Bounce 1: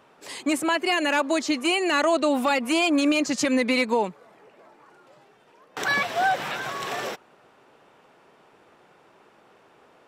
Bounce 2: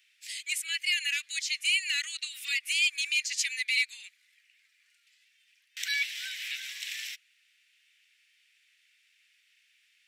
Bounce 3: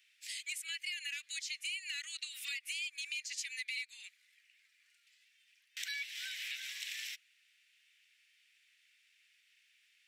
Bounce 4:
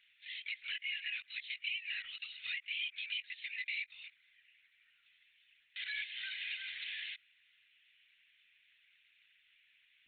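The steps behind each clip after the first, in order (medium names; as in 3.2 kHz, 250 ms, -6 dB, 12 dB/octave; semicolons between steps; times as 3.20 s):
steep high-pass 2 kHz 48 dB/octave
compression 6:1, threshold -35 dBFS, peak gain reduction 12.5 dB; trim -3 dB
LPC vocoder at 8 kHz whisper; trim +1.5 dB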